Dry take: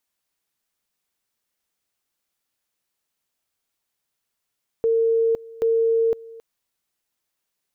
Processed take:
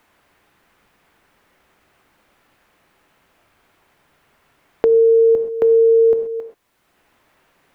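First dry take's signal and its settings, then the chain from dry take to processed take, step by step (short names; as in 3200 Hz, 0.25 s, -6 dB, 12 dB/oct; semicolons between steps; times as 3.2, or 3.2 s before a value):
two-level tone 455 Hz -16 dBFS, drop 21.5 dB, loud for 0.51 s, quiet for 0.27 s, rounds 2
in parallel at +2 dB: limiter -25.5 dBFS; on the sum: non-linear reverb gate 0.15 s flat, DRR 7 dB; three-band squash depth 70%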